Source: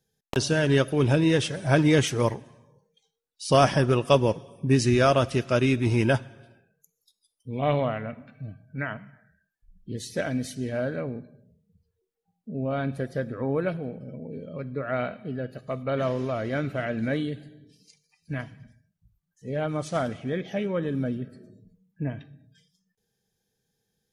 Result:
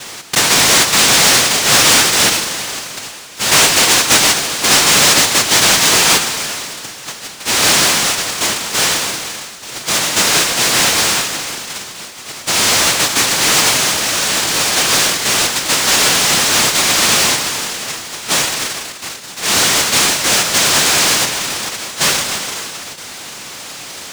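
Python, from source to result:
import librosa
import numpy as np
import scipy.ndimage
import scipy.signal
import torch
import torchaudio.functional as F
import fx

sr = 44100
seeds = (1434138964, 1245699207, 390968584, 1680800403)

y = fx.noise_vocoder(x, sr, seeds[0], bands=1)
y = fx.power_curve(y, sr, exponent=0.35)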